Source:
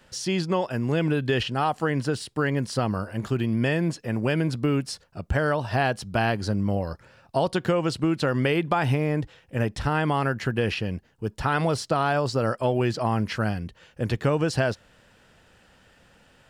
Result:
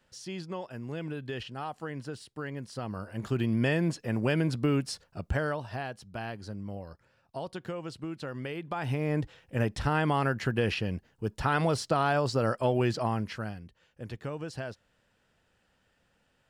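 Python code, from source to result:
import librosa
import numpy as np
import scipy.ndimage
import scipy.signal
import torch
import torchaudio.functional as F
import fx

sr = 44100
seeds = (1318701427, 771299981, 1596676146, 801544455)

y = fx.gain(x, sr, db=fx.line((2.73, -13.0), (3.41, -3.0), (5.22, -3.0), (5.87, -14.0), (8.6, -14.0), (9.17, -3.0), (12.96, -3.0), (13.65, -14.0)))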